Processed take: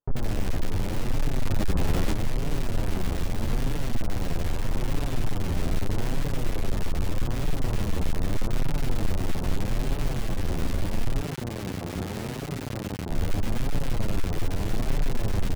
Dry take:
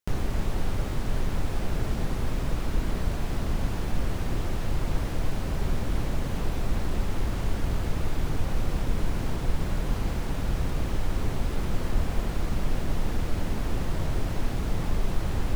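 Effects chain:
each half-wave held at its own peak
0:11.21–0:13.10: high-pass filter 110 Hz 12 dB per octave
soft clipping −17 dBFS, distortion −17 dB
flanger 0.8 Hz, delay 6.7 ms, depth 5.3 ms, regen +1%
multiband delay without the direct sound lows, highs 90 ms, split 1,200 Hz
0:01.43–0:02.12: envelope flattener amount 50%
level +1.5 dB

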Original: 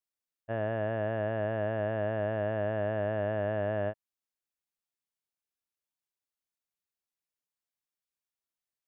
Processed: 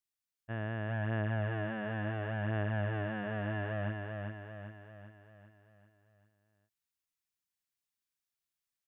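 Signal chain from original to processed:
parametric band 560 Hz −13.5 dB 1.1 octaves
repeating echo 394 ms, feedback 51%, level −4 dB

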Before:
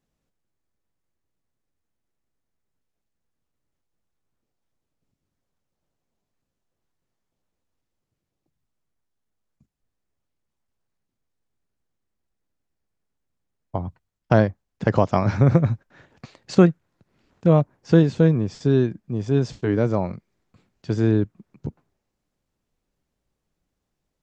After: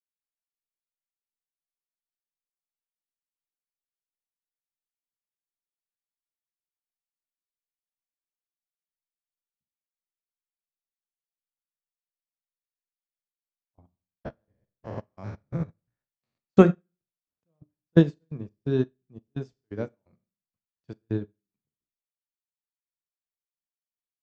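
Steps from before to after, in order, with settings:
0:13.86–0:16.38: spectrum averaged block by block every 200 ms
mains-hum notches 60/120/180/240/300/360/420 Hz
gate pattern ".x.x.x.x" 86 BPM −24 dB
four-comb reverb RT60 0.48 s, combs from 27 ms, DRR 9.5 dB
expander for the loud parts 2.5 to 1, over −37 dBFS
level +3 dB

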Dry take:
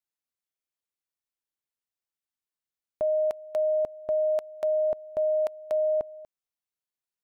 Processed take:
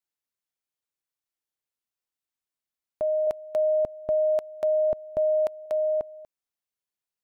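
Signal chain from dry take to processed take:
0:03.27–0:05.66: low-shelf EQ 320 Hz +9.5 dB

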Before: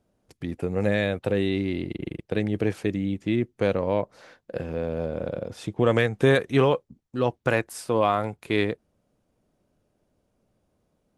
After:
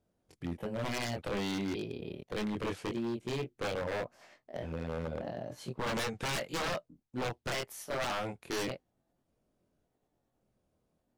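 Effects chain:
pitch shifter gated in a rhythm +3 semitones, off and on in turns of 578 ms
dynamic equaliser 3,900 Hz, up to +5 dB, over −43 dBFS, Q 0.73
chorus effect 0.32 Hz, depth 2.5 ms
wave folding −24.5 dBFS
level −4 dB

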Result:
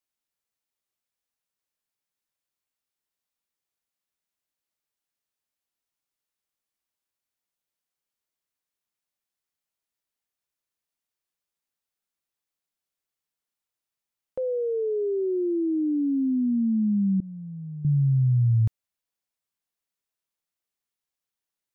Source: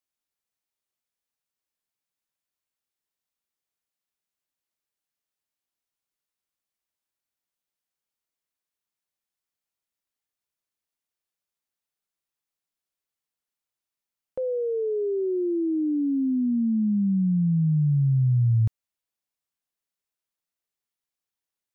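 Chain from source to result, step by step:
0:17.20–0:17.85: downward expander −12 dBFS

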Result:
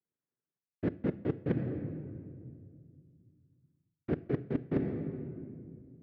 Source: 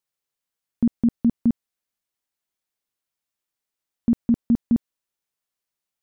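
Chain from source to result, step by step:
stylus tracing distortion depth 0.26 ms
Gaussian smoothing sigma 16 samples
low-shelf EQ 250 Hz +7.5 dB
cochlear-implant simulation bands 3
rectangular room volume 3,700 cubic metres, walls mixed, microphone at 0.33 metres
reversed playback
downward compressor 12 to 1, threshold −31 dBFS, peak gain reduction 20.5 dB
reversed playback
level +2.5 dB

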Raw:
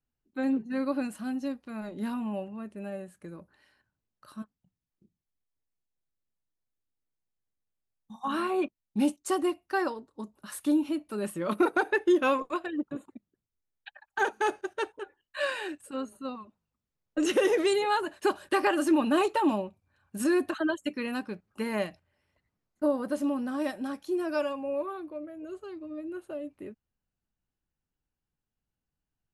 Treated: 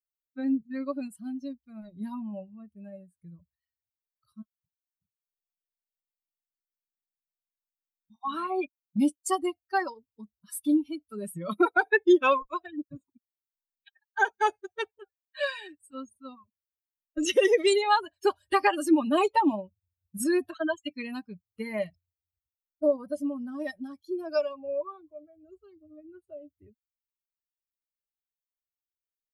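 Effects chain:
spectral dynamics exaggerated over time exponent 2
dynamic equaliser 170 Hz, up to −5 dB, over −43 dBFS, Q 0.78
level +7.5 dB

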